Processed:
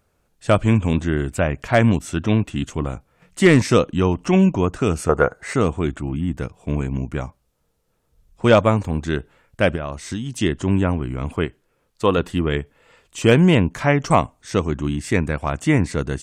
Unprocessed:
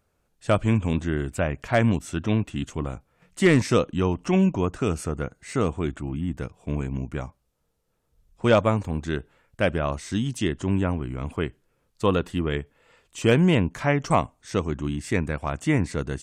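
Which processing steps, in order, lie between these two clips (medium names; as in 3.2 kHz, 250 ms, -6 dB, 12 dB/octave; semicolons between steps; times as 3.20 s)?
5.09–5.54 s: high-order bell 850 Hz +12 dB 2.5 oct; 9.75–10.38 s: compression 6:1, threshold -29 dBFS, peak gain reduction 8 dB; 11.45–12.18 s: tone controls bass -5 dB, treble -2 dB; trim +5 dB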